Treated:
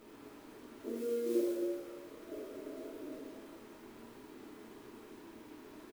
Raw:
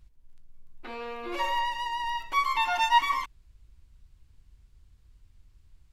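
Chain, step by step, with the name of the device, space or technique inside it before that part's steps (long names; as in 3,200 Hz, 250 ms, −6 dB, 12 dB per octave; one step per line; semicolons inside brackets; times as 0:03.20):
brick-wall band-pass 210–660 Hz
comb filter 2.8 ms, depth 59%
early CD player with a faulty converter (converter with a step at zero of −53.5 dBFS; converter with an unsteady clock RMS 0.029 ms)
reverb whose tail is shaped and stops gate 470 ms falling, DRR −6 dB
level −1 dB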